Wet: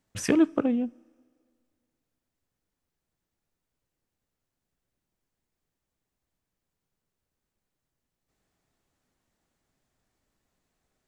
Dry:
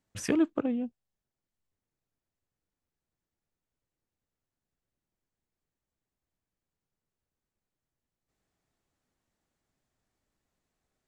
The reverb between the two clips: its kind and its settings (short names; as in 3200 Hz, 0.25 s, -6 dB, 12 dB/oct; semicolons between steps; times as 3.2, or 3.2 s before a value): two-slope reverb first 0.41 s, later 2.1 s, from -16 dB, DRR 19.5 dB; gain +4.5 dB